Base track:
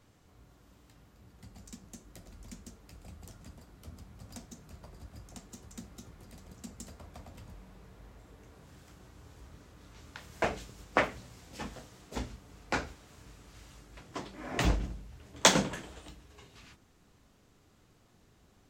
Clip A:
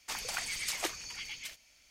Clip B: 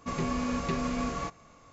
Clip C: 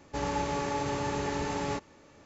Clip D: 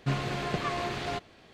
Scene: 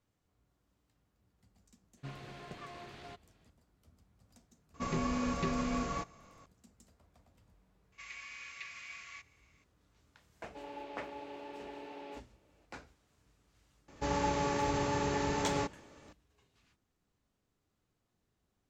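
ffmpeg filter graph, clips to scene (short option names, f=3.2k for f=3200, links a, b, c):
-filter_complex "[2:a]asplit=2[a][b];[3:a]asplit=2[c][d];[0:a]volume=-17dB[e];[b]highpass=f=2.2k:t=q:w=3.8[f];[c]highpass=f=270:w=0.5412,highpass=f=270:w=1.3066,equalizer=f=330:t=q:w=4:g=4,equalizer=f=670:t=q:w=4:g=5,equalizer=f=1.2k:t=q:w=4:g=-7,equalizer=f=1.8k:t=q:w=4:g=-4,equalizer=f=2.7k:t=q:w=4:g=4,lowpass=f=4k:w=0.5412,lowpass=f=4k:w=1.3066[g];[4:a]atrim=end=1.53,asetpts=PTS-STARTPTS,volume=-16.5dB,afade=t=in:d=0.004:c=hsin,afade=t=out:st=1.526:d=0.004:c=hsin,adelay=1970[h];[a]atrim=end=1.72,asetpts=PTS-STARTPTS,volume=-3dB,afade=t=in:d=0.004:c=hsin,afade=t=out:st=1.716:d=0.004:c=hsin,adelay=4740[i];[f]atrim=end=1.72,asetpts=PTS-STARTPTS,volume=-12dB,afade=t=in:d=0.004:c=hsin,afade=t=out:st=1.716:d=0.004:c=hsin,adelay=7920[j];[g]atrim=end=2.25,asetpts=PTS-STARTPTS,volume=-14.5dB,afade=t=in:d=0.004:c=hsin,afade=t=out:st=2.246:d=0.004:c=hsin,adelay=10410[k];[d]atrim=end=2.25,asetpts=PTS-STARTPTS,volume=-1dB,afade=t=in:d=0.004:c=hsin,afade=t=out:st=2.246:d=0.004:c=hsin,adelay=13880[l];[e][h][i][j][k][l]amix=inputs=6:normalize=0"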